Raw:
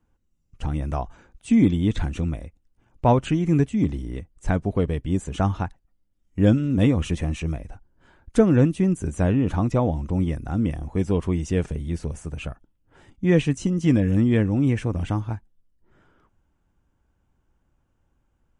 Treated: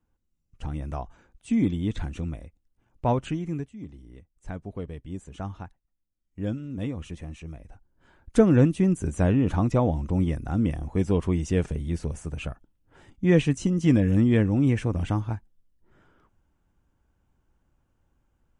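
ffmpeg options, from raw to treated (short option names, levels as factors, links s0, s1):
-af "volume=3.98,afade=t=out:st=3.26:d=0.47:silence=0.223872,afade=t=in:st=3.73:d=0.99:silence=0.473151,afade=t=in:st=7.52:d=0.86:silence=0.266073"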